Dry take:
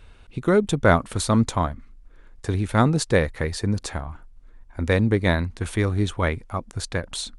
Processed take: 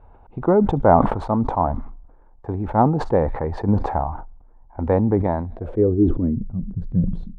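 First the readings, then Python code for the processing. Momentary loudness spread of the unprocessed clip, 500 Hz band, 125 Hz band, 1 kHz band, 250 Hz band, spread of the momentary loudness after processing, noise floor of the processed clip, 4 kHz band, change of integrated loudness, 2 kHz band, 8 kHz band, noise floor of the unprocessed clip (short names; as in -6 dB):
13 LU, +3.5 dB, +0.5 dB, +6.0 dB, +3.5 dB, 13 LU, -49 dBFS, under -15 dB, +2.0 dB, -11.5 dB, under -25 dB, -49 dBFS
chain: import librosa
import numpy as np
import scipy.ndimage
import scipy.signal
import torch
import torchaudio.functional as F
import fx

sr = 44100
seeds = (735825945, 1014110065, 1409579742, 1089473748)

p1 = x + fx.echo_wet_highpass(x, sr, ms=67, feedback_pct=54, hz=4700.0, wet_db=-13.5, dry=0)
p2 = fx.dynamic_eq(p1, sr, hz=270.0, q=0.84, threshold_db=-28.0, ratio=4.0, max_db=4)
p3 = fx.rider(p2, sr, range_db=5, speed_s=0.5)
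p4 = p2 + (p3 * librosa.db_to_amplitude(2.5))
p5 = fx.tremolo_random(p4, sr, seeds[0], hz=1.9, depth_pct=55)
p6 = fx.filter_sweep_lowpass(p5, sr, from_hz=840.0, to_hz=180.0, start_s=5.4, end_s=6.5, q=4.9)
p7 = fx.sustainer(p6, sr, db_per_s=61.0)
y = p7 * librosa.db_to_amplitude(-7.0)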